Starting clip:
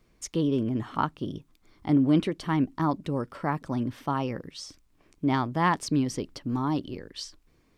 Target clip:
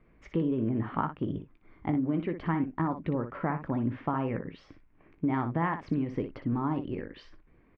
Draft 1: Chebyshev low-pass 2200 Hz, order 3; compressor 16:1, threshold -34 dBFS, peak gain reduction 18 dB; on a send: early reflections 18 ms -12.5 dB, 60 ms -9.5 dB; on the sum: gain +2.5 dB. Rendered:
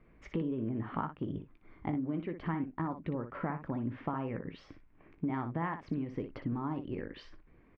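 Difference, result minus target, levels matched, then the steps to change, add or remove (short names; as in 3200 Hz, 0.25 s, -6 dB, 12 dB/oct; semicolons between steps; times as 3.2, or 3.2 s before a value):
compressor: peak gain reduction +6 dB
change: compressor 16:1, threshold -27.5 dBFS, peak gain reduction 11.5 dB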